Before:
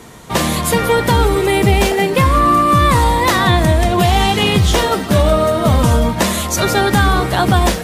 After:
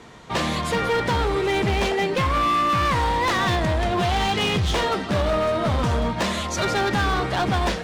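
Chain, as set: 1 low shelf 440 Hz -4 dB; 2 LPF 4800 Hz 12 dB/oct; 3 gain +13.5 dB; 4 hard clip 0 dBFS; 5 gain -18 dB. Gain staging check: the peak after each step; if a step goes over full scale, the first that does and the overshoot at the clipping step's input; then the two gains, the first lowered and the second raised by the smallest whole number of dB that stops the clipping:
-3.0, -3.5, +10.0, 0.0, -18.0 dBFS; step 3, 10.0 dB; step 3 +3.5 dB, step 5 -8 dB

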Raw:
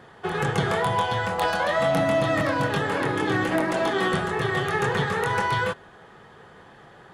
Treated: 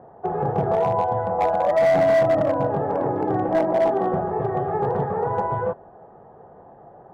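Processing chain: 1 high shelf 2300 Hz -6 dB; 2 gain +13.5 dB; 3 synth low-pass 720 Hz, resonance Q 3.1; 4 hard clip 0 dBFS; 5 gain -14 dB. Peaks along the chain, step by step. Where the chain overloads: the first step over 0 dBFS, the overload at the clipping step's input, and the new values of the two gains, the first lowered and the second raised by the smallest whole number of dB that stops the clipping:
-11.0, +2.5, +8.0, 0.0, -14.0 dBFS; step 2, 8.0 dB; step 2 +5.5 dB, step 5 -6 dB

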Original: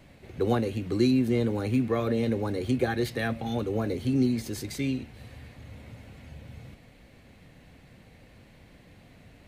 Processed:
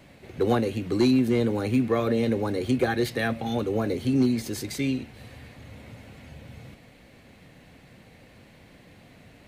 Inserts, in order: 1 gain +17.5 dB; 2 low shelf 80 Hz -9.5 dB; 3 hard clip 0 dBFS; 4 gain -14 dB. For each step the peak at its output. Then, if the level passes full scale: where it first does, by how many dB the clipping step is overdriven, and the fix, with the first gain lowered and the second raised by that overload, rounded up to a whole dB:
+6.0, +4.5, 0.0, -14.0 dBFS; step 1, 4.5 dB; step 1 +12.5 dB, step 4 -9 dB

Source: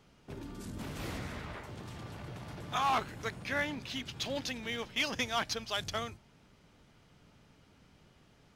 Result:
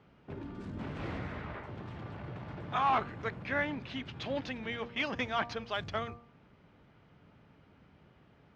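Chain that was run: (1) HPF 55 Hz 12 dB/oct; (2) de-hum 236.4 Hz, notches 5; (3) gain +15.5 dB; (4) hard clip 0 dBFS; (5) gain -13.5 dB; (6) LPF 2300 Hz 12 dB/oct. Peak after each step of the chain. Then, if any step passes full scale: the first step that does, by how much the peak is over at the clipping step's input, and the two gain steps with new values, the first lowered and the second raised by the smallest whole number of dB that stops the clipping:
-21.5, -20.5, -5.0, -5.0, -18.5, -18.5 dBFS; no overload

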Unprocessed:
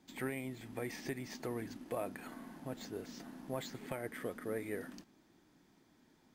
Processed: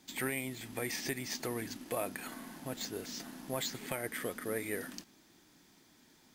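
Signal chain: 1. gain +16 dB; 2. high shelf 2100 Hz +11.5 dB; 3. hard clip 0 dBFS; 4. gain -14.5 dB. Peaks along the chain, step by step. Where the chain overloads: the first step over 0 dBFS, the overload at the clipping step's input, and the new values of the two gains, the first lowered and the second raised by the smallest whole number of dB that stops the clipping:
-9.5, -4.0, -4.0, -18.5 dBFS; no overload

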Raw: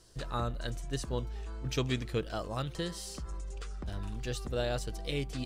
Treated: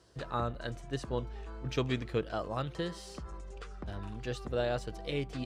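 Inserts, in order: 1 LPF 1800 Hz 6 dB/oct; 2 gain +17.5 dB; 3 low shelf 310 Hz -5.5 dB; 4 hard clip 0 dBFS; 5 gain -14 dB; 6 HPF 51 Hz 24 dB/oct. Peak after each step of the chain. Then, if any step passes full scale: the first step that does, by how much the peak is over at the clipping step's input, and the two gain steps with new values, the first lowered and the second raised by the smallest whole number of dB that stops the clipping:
-19.0, -1.5, -4.5, -4.5, -18.5, -19.0 dBFS; no overload

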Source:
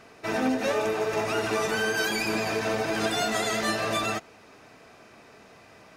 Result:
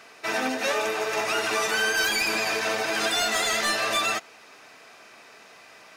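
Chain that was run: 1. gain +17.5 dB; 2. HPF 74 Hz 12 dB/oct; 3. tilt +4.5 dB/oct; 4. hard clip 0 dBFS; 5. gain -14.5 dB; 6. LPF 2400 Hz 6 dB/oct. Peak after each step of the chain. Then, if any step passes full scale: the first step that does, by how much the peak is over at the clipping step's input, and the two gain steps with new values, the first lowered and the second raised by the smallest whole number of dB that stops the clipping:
+4.0, +3.5, +8.0, 0.0, -14.5, -15.0 dBFS; step 1, 8.0 dB; step 1 +9.5 dB, step 5 -6.5 dB

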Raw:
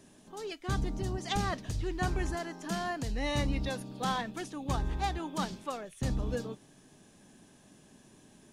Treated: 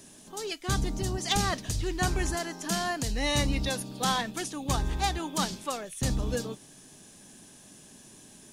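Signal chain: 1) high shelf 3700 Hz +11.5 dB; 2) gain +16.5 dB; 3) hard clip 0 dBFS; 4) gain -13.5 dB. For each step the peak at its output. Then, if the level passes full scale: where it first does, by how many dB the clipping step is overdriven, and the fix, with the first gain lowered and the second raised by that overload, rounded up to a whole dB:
-12.5, +4.0, 0.0, -13.5 dBFS; step 2, 4.0 dB; step 2 +12.5 dB, step 4 -9.5 dB

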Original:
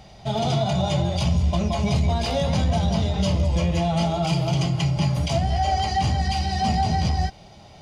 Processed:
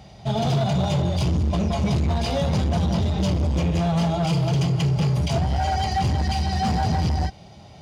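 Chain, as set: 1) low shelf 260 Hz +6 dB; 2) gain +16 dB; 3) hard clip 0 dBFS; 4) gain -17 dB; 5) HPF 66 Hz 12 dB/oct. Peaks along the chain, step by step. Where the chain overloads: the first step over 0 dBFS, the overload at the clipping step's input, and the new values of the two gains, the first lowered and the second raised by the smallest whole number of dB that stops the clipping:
-6.5, +9.5, 0.0, -17.0, -11.0 dBFS; step 2, 9.5 dB; step 2 +6 dB, step 4 -7 dB

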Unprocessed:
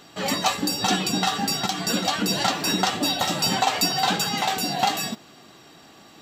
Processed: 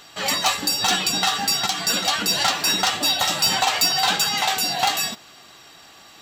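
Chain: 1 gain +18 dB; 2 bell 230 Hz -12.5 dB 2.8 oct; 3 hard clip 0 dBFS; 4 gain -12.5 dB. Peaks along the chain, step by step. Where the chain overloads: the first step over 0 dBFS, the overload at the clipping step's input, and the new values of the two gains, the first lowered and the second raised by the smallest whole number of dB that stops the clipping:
+10.0, +9.5, 0.0, -12.5 dBFS; step 1, 9.5 dB; step 1 +8 dB, step 4 -2.5 dB

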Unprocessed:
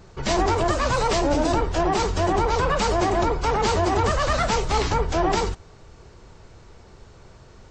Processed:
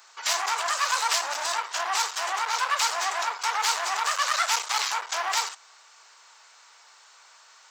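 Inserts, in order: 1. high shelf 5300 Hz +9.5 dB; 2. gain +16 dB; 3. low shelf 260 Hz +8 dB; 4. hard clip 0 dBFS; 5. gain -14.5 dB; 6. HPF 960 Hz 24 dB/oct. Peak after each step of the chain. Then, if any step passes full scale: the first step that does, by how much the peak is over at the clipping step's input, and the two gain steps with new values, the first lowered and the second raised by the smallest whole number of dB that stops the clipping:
-9.0, +7.0, +10.0, 0.0, -14.5, -10.5 dBFS; step 2, 10.0 dB; step 2 +6 dB, step 5 -4.5 dB

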